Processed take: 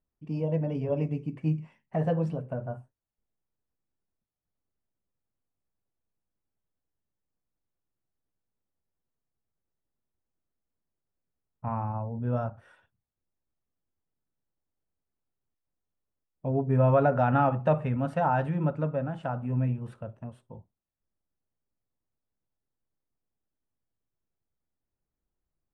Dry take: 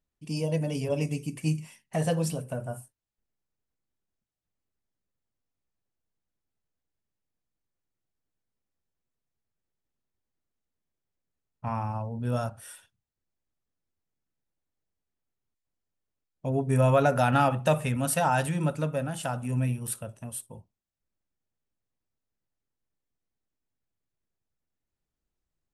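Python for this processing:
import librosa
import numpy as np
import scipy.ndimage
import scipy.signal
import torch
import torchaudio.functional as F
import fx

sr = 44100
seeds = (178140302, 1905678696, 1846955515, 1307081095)

y = scipy.signal.sosfilt(scipy.signal.butter(2, 1400.0, 'lowpass', fs=sr, output='sos'), x)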